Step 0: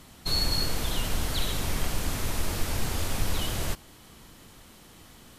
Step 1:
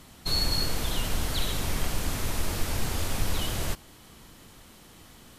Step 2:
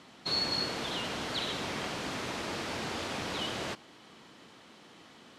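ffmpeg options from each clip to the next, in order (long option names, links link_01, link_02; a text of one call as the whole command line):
ffmpeg -i in.wav -af anull out.wav
ffmpeg -i in.wav -af "highpass=220,lowpass=4600" out.wav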